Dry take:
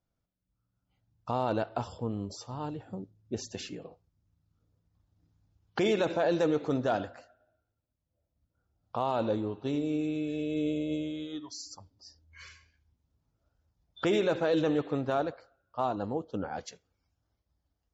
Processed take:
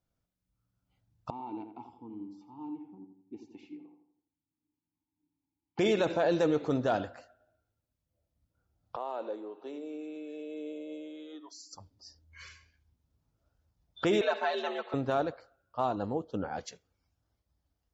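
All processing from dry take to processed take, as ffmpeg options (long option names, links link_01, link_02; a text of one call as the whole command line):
ffmpeg -i in.wav -filter_complex "[0:a]asettb=1/sr,asplit=3[link_01][link_02][link_03];[link_01]atrim=end=1.304[link_04];[link_02]atrim=start=1.3:end=5.79,asetpts=PTS-STARTPTS,afade=type=in:duration=0.004:curve=qsin,afade=type=out:start_time=4.486:duration=0.004:curve=qsin,asplit=3[link_05][link_06][link_07];[link_05]bandpass=frequency=300:width_type=q:width=8,volume=0dB[link_08];[link_06]bandpass=frequency=870:width_type=q:width=8,volume=-6dB[link_09];[link_07]bandpass=frequency=2240:width_type=q:width=8,volume=-9dB[link_10];[link_08][link_09][link_10]amix=inputs=3:normalize=0,asplit=2[link_11][link_12];[link_12]adelay=84,lowpass=frequency=2200:poles=1,volume=-7.5dB,asplit=2[link_13][link_14];[link_14]adelay=84,lowpass=frequency=2200:poles=1,volume=0.45,asplit=2[link_15][link_16];[link_16]adelay=84,lowpass=frequency=2200:poles=1,volume=0.45,asplit=2[link_17][link_18];[link_18]adelay=84,lowpass=frequency=2200:poles=1,volume=0.45,asplit=2[link_19][link_20];[link_20]adelay=84,lowpass=frequency=2200:poles=1,volume=0.45[link_21];[link_11][link_13][link_15][link_17][link_19][link_21]amix=inputs=6:normalize=0,atrim=end_sample=198009[link_22];[link_03]atrim=start=5.786[link_23];[link_04][link_22]acrossfade=duration=0.004:curve1=hsin:curve2=qsin[link_24];[link_24][link_23]acrossfade=duration=0.004:curve1=qsin:curve2=hsin,asettb=1/sr,asplit=3[link_25][link_26][link_27];[link_25]atrim=end=8.964[link_28];[link_26]atrim=start=8.96:end=11.73,asetpts=PTS-STARTPTS,afade=type=in:duration=0.004:curve=qsin,afade=type=out:start_time=2.766:duration=0.004:curve=qsin,equalizer=frequency=4800:width=0.58:gain=-8,acompressor=threshold=-42dB:ratio=1.5:attack=3.2:release=140:knee=1:detection=peak,highpass=frequency=340:width=0.5412,highpass=frequency=340:width=1.3066[link_29];[link_27]atrim=start=11.726[link_30];[link_28][link_29]acrossfade=duration=0.004:curve1=hsin:curve2=qsin[link_31];[link_31][link_30]acrossfade=duration=0.004:curve1=qsin:curve2=hsin,asettb=1/sr,asplit=3[link_32][link_33][link_34];[link_32]atrim=end=14.214[link_35];[link_33]atrim=start=14.21:end=14.94,asetpts=PTS-STARTPTS,afade=type=in:duration=0.004:curve=qsin,afade=type=out:start_time=0.726:duration=0.004:curve=qsin,afreqshift=75,highpass=730,lowpass=4400,aecho=1:1:4.6:0.94,atrim=end_sample=32193[link_36];[link_34]atrim=start=14.936[link_37];[link_35][link_36]acrossfade=duration=0.004:curve1=hsin:curve2=qsin[link_38];[link_38][link_37]acrossfade=duration=0.004:curve1=qsin:curve2=hsin" out.wav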